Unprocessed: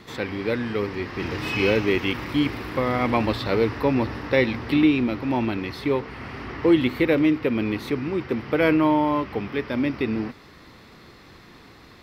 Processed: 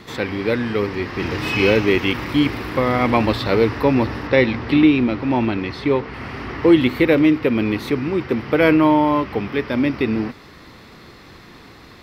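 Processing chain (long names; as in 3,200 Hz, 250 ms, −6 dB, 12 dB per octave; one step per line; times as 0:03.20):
0:04.27–0:06.14: high-frequency loss of the air 61 metres
level +5 dB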